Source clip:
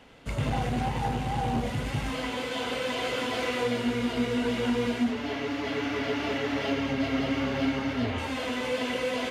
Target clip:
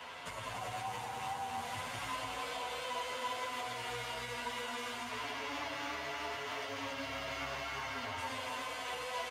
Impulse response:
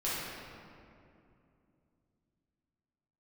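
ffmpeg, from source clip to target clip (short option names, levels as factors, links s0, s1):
-filter_complex "[0:a]acrossover=split=88|810|6200[s0][s1][s2][s3];[s0]acompressor=threshold=0.00355:ratio=4[s4];[s1]acompressor=threshold=0.01:ratio=4[s5];[s2]acompressor=threshold=0.00501:ratio=4[s6];[s3]acompressor=threshold=0.00158:ratio=4[s7];[s4][s5][s6][s7]amix=inputs=4:normalize=0,firequalizer=gain_entry='entry(100,0);entry(220,-5);entry(710,11)':delay=0.05:min_phase=1,alimiter=level_in=2:limit=0.0631:level=0:latency=1:release=340,volume=0.501,highpass=66,equalizer=f=1000:w=3.1:g=6.5,bandreject=f=820:w=12,asplit=2[s8][s9];[s9]aecho=0:1:282:0.631[s10];[s8][s10]amix=inputs=2:normalize=0,asplit=2[s11][s12];[s12]adelay=9.6,afreqshift=0.63[s13];[s11][s13]amix=inputs=2:normalize=1"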